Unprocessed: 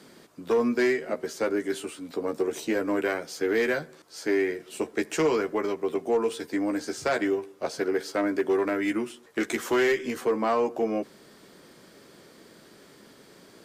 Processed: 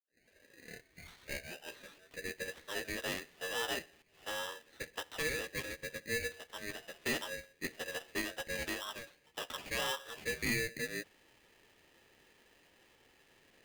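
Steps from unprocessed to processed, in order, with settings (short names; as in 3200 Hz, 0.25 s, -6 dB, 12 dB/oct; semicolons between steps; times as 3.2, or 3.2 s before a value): tape start at the beginning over 1.99 s; mistuned SSB +170 Hz 500–2400 Hz; polarity switched at an audio rate 1100 Hz; gain -8 dB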